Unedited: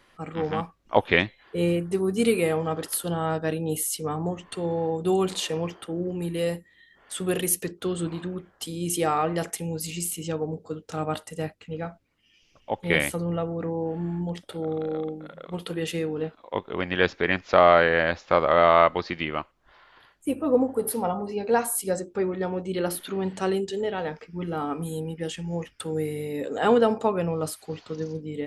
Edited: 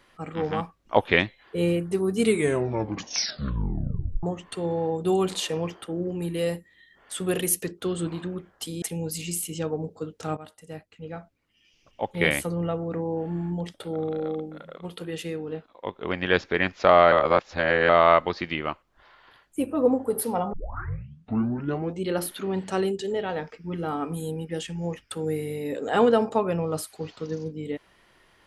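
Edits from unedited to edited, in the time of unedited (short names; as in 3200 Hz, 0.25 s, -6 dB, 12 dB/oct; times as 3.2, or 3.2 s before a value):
2.2 tape stop 2.03 s
8.82–9.51 cut
11.06–13.14 fade in equal-power, from -17 dB
15.48–16.71 gain -4 dB
17.81–18.58 reverse
21.22 tape start 1.48 s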